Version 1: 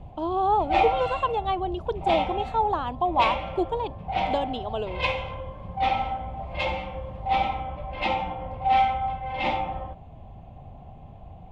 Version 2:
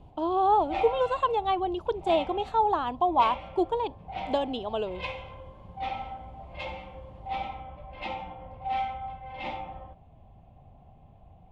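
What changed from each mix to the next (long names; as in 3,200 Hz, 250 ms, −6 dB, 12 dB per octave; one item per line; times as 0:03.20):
background −9.5 dB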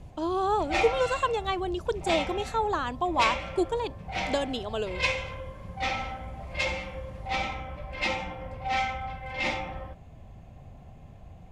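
background +6.5 dB
master: remove drawn EQ curve 540 Hz 0 dB, 800 Hz +7 dB, 1,700 Hz −8 dB, 3,200 Hz −1 dB, 5,900 Hz −17 dB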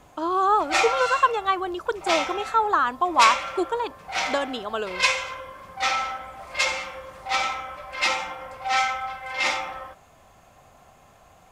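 background: add bass and treble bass −14 dB, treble +15 dB
master: add parametric band 1,300 Hz +12.5 dB 0.96 octaves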